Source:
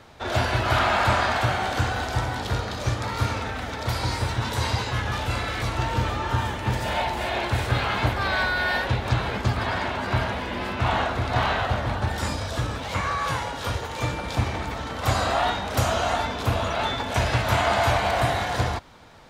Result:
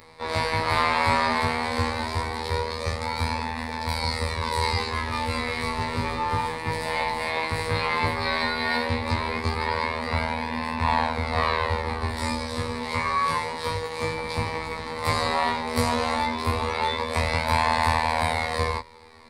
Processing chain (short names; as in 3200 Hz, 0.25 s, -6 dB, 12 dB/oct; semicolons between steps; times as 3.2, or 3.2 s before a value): robotiser 80.2 Hz; chorus 0.14 Hz, delay 18.5 ms, depth 5.3 ms; ripple EQ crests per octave 0.93, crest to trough 12 dB; gain +4 dB